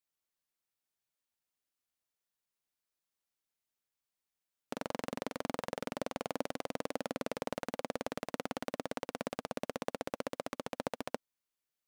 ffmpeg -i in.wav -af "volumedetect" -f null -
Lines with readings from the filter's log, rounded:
mean_volume: -42.8 dB
max_volume: -17.2 dB